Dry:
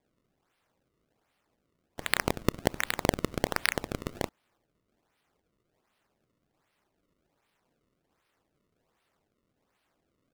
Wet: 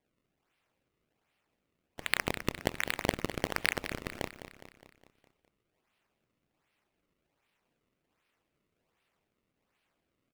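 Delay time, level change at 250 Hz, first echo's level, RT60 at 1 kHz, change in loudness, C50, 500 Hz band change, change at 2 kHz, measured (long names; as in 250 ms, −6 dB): 206 ms, −5.0 dB, −11.5 dB, no reverb audible, −3.0 dB, no reverb audible, −4.5 dB, −1.0 dB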